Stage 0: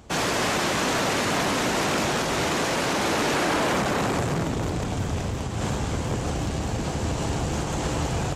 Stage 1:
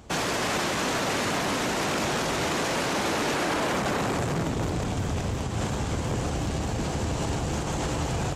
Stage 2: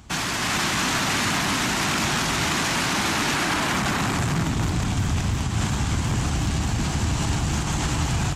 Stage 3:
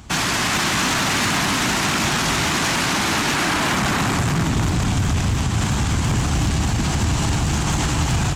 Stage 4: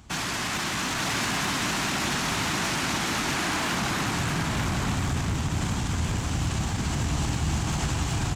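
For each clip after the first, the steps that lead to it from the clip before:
peak limiter -19.5 dBFS, peak gain reduction 4.5 dB
level rider gain up to 3 dB; peaking EQ 500 Hz -14.5 dB 1 oct; trim +3.5 dB
peak limiter -16.5 dBFS, peak gain reduction 4 dB; overload inside the chain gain 19.5 dB; trim +5.5 dB
delay 888 ms -3 dB; trim -9 dB

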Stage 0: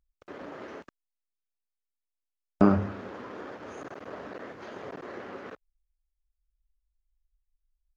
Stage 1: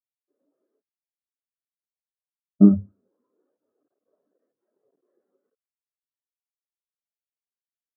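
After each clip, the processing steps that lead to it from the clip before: spectral contrast expander 2.5:1; trim +6 dB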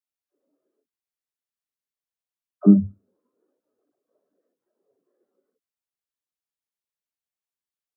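phase dispersion lows, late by 71 ms, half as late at 410 Hz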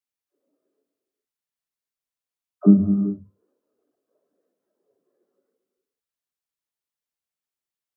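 gated-style reverb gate 440 ms flat, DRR 6.5 dB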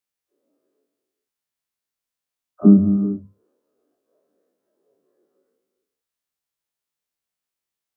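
every event in the spectrogram widened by 60 ms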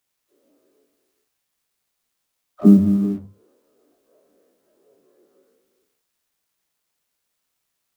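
companding laws mixed up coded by mu

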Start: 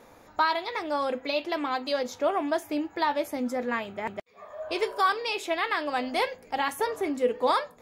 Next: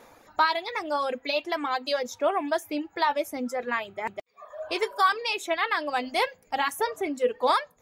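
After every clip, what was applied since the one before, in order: reverb removal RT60 1.1 s; bass shelf 430 Hz -5.5 dB; trim +3 dB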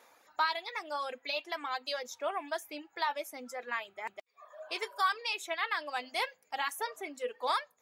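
high-pass 1 kHz 6 dB/octave; trim -5 dB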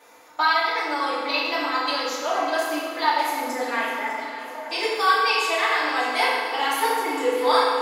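on a send: echo whose repeats swap between lows and highs 300 ms, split 1.2 kHz, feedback 78%, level -11 dB; on the sum: FDN reverb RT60 1.7 s, low-frequency decay 1.45×, high-frequency decay 0.75×, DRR -8.5 dB; trim +3.5 dB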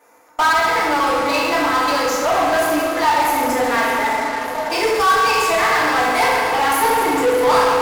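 peaking EQ 3.6 kHz -12 dB 0.96 oct; in parallel at -5.5 dB: fuzz box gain 32 dB, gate -42 dBFS

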